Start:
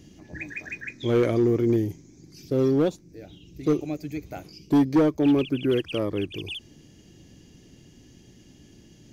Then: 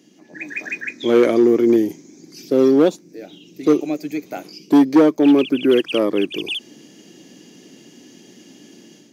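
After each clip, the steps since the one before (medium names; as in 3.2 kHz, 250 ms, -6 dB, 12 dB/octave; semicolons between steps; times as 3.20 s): high-pass 210 Hz 24 dB/octave; level rider gain up to 10 dB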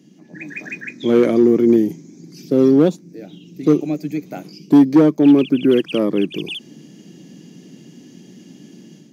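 peaking EQ 160 Hz +14.5 dB 1.3 oct; trim -3.5 dB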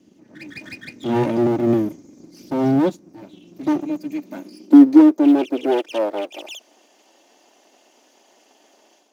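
comb filter that takes the minimum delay 3.3 ms; short-mantissa float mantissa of 6-bit; high-pass sweep 130 Hz -> 750 Hz, 3.38–6.74 s; trim -5 dB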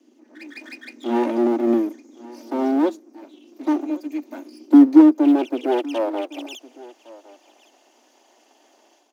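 rippled Chebyshev high-pass 230 Hz, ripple 3 dB; delay 1110 ms -20.5 dB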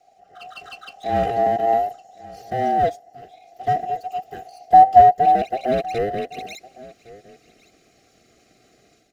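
every band turned upside down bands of 1 kHz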